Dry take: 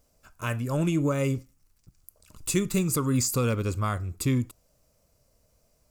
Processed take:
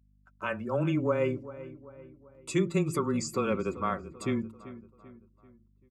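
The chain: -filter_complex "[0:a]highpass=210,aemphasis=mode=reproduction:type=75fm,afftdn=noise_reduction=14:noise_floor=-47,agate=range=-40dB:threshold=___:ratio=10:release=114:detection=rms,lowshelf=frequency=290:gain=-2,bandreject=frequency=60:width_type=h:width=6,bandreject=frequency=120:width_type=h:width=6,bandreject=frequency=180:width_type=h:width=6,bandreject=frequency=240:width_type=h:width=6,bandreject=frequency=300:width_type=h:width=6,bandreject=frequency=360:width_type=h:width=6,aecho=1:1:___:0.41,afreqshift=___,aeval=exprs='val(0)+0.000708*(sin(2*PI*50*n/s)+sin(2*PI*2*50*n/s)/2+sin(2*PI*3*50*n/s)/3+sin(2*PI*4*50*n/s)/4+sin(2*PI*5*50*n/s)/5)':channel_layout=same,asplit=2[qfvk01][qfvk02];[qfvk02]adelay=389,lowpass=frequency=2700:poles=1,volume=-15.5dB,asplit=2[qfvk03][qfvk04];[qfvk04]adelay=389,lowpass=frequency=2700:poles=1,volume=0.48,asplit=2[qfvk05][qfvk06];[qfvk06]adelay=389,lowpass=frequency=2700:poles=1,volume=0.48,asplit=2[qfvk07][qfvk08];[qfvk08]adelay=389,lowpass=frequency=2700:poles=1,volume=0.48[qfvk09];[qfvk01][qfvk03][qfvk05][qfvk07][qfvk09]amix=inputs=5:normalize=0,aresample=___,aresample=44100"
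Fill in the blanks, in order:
-57dB, 5.2, -16, 32000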